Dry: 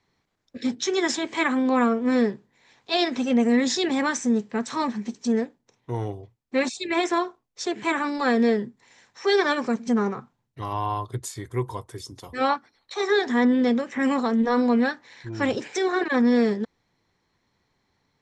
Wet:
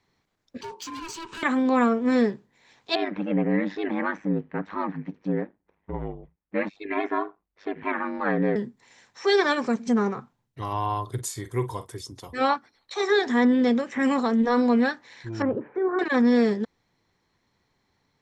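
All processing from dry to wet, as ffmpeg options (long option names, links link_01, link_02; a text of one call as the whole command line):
ffmpeg -i in.wav -filter_complex "[0:a]asettb=1/sr,asplit=3[link_01][link_02][link_03];[link_01]atrim=end=0.614[link_04];[link_02]atrim=start=0.61:end=1.43,asetpts=PTS-STARTPTS,afade=type=in:duration=0.004:curve=qsin,afade=type=out:start_time=0.816:duration=0.004:curve=qsin,aeval=exprs='val(0)*sin(2*PI*660*n/s)':channel_layout=same,acompressor=threshold=-32dB:ratio=3:attack=3.2:release=140:knee=1:detection=peak,volume=32dB,asoftclip=hard,volume=-32dB[link_05];[link_03]atrim=start=1.426[link_06];[link_04][link_05]acrossfade=duration=0.004:curve1=hsin:curve2=qsin[link_07];[link_07][link_06]acrossfade=duration=0.004:curve1=qsin:curve2=hsin,asettb=1/sr,asplit=3[link_08][link_09][link_10];[link_08]atrim=end=2.954[link_11];[link_09]atrim=start=2.95:end=8.56,asetpts=PTS-STARTPTS,afade=type=in:duration=0.004:curve=qsin,afade=type=out:start_time=5.606:duration=0.004:curve=qsin,lowpass=frequency=2100:width=0.5412,lowpass=frequency=2100:width=1.3066,aemphasis=mode=production:type=75fm,aeval=exprs='val(0)*sin(2*PI*50*n/s)':channel_layout=same[link_12];[link_10]atrim=start=8.556[link_13];[link_11][link_12]acrossfade=duration=0.004:curve1=hsin:curve2=qsin[link_14];[link_14][link_13]acrossfade=duration=0.004:curve1=qsin:curve2=hsin,asettb=1/sr,asplit=3[link_15][link_16][link_17];[link_15]atrim=end=11.024[link_18];[link_16]atrim=start=11.02:end=11.94,asetpts=PTS-STARTPTS,afade=type=in:duration=0.004:curve=qsin,afade=type=out:start_time=0.916:duration=0.004:curve=qsin,highshelf=frequency=7700:gain=5.5,asplit=2[link_19][link_20];[link_20]adelay=46,volume=-12dB[link_21];[link_19][link_21]amix=inputs=2:normalize=0,atrim=end_sample=40572[link_22];[link_17]atrim=start=11.936[link_23];[link_18][link_22]acrossfade=duration=0.004:curve1=hsin:curve2=qsin[link_24];[link_24][link_23]acrossfade=duration=0.004:curve1=qsin:curve2=hsin,asettb=1/sr,asplit=3[link_25][link_26][link_27];[link_25]atrim=end=15.424[link_28];[link_26]atrim=start=15.42:end=15.99,asetpts=PTS-STARTPTS,afade=type=in:duration=0.004:curve=qsin,afade=type=out:start_time=0.566:duration=0.004:curve=qsin,lowpass=frequency=1300:width=0.5412,lowpass=frequency=1300:width=1.3066,equalizer=frequency=760:width=3.1:gain=-6[link_29];[link_27]atrim=start=15.986[link_30];[link_28][link_29]acrossfade=duration=0.004:curve1=hsin:curve2=qsin[link_31];[link_31][link_30]acrossfade=duration=0.004:curve1=qsin:curve2=hsin" out.wav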